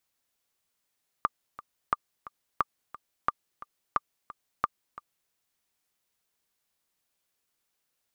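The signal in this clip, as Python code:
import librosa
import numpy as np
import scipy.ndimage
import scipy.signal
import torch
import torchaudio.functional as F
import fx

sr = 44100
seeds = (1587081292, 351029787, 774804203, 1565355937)

y = fx.click_track(sr, bpm=177, beats=2, bars=6, hz=1190.0, accent_db=17.5, level_db=-10.5)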